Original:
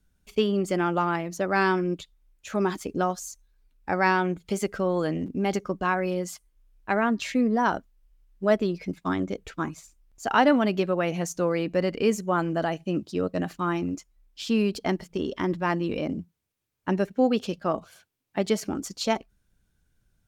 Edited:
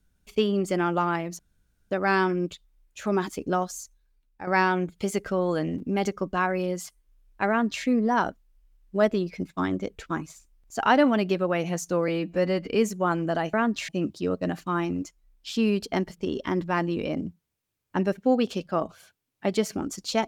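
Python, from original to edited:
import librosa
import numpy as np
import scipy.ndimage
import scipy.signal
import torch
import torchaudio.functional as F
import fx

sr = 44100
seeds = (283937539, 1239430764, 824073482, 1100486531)

y = fx.edit(x, sr, fx.insert_room_tone(at_s=1.39, length_s=0.52),
    fx.fade_out_to(start_s=3.26, length_s=0.69, floor_db=-11.0),
    fx.duplicate(start_s=6.97, length_s=0.35, to_s=12.81),
    fx.stretch_span(start_s=11.56, length_s=0.41, factor=1.5), tone=tone)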